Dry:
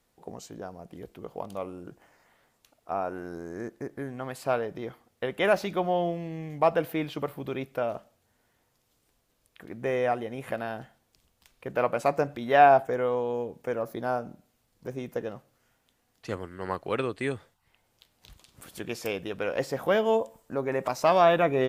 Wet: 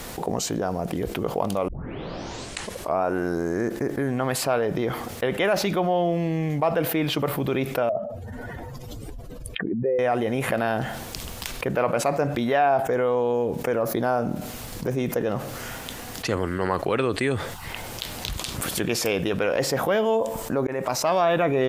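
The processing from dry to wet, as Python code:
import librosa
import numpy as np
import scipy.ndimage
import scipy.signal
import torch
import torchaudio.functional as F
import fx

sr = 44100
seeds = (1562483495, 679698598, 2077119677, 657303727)

y = fx.spec_expand(x, sr, power=2.3, at=(7.89, 9.99))
y = fx.edit(y, sr, fx.tape_start(start_s=1.68, length_s=1.35),
    fx.fade_in_span(start_s=20.67, length_s=0.57), tone=tone)
y = fx.env_flatten(y, sr, amount_pct=70)
y = F.gain(torch.from_numpy(y), -4.5).numpy()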